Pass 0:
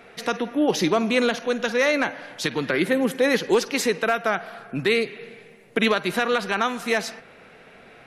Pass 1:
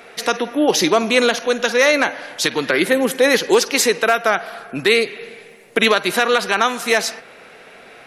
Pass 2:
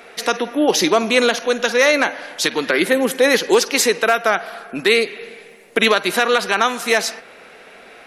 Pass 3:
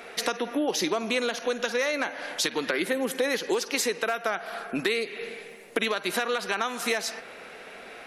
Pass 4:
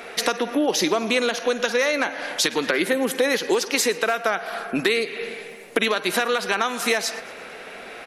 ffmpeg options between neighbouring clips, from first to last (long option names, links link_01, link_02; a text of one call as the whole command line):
ffmpeg -i in.wav -af "bass=frequency=250:gain=-9,treble=frequency=4000:gain=5,volume=6.5dB" out.wav
ffmpeg -i in.wav -af "equalizer=frequency=130:width_type=o:width=0.3:gain=-12.5" out.wav
ffmpeg -i in.wav -af "acompressor=threshold=-23dB:ratio=5,volume=-1.5dB" out.wav
ffmpeg -i in.wav -af "aecho=1:1:114|228|342|456:0.0841|0.048|0.0273|0.0156,volume=5.5dB" out.wav